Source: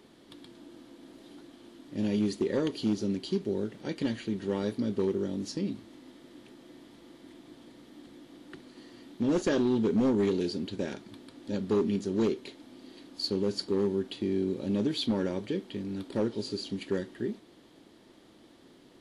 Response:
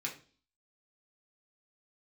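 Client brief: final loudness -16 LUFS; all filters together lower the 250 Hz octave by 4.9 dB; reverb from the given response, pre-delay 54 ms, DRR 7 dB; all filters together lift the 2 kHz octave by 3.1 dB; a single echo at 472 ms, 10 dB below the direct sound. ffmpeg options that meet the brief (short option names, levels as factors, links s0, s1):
-filter_complex "[0:a]equalizer=f=250:t=o:g=-6.5,equalizer=f=2000:t=o:g=4,aecho=1:1:472:0.316,asplit=2[s0][s1];[1:a]atrim=start_sample=2205,adelay=54[s2];[s1][s2]afir=irnorm=-1:irlink=0,volume=0.355[s3];[s0][s3]amix=inputs=2:normalize=0,volume=7.08"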